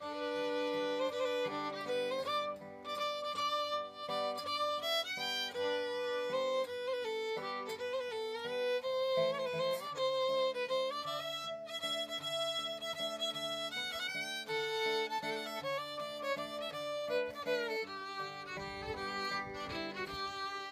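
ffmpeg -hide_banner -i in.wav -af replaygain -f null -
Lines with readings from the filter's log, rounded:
track_gain = +17.1 dB
track_peak = 0.052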